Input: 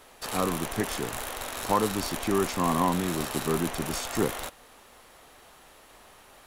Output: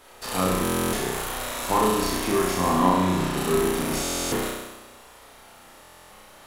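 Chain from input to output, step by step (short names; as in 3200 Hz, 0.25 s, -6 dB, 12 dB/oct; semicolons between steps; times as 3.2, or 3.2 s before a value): 2.68–3.38 high shelf 7400 Hz -10.5 dB; flutter echo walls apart 5.6 m, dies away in 1.1 s; stuck buffer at 0.63/4.02/5.81, samples 1024, times 12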